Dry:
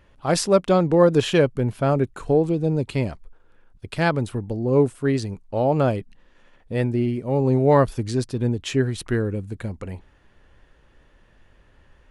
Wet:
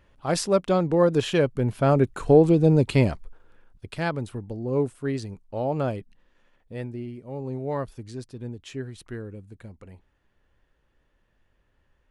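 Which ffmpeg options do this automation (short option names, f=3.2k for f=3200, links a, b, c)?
-af "volume=4dB,afade=t=in:st=1.39:d=1.14:silence=0.398107,afade=t=out:st=3.1:d=0.91:silence=0.298538,afade=t=out:st=5.99:d=1.06:silence=0.473151"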